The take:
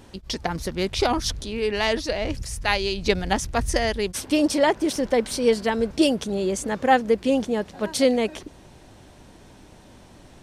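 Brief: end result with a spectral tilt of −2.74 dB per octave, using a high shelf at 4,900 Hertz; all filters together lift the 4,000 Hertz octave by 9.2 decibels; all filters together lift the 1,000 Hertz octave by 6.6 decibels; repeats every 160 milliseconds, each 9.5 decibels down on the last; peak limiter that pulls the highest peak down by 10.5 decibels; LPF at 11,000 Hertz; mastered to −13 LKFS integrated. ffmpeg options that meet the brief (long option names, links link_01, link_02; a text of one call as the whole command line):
ffmpeg -i in.wav -af "lowpass=11000,equalizer=frequency=1000:width_type=o:gain=8.5,equalizer=frequency=4000:width_type=o:gain=7.5,highshelf=frequency=4900:gain=8,alimiter=limit=-10.5dB:level=0:latency=1,aecho=1:1:160|320|480|640:0.335|0.111|0.0365|0.012,volume=8.5dB" out.wav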